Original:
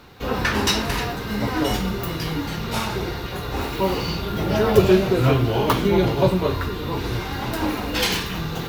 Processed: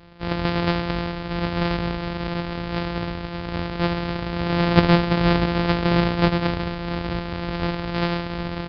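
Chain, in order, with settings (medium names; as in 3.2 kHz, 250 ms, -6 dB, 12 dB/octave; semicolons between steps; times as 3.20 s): sorted samples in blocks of 256 samples; resampled via 11.025 kHz; trim -1 dB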